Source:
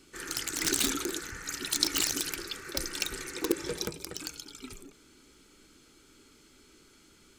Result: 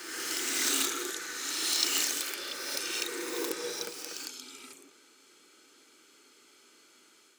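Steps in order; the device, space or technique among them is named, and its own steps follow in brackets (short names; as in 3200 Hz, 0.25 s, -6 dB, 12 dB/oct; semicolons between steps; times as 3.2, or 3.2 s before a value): ghost voice (reverse; reverb RT60 2.0 s, pre-delay 20 ms, DRR -3.5 dB; reverse; HPF 440 Hz 12 dB/oct); gain -3.5 dB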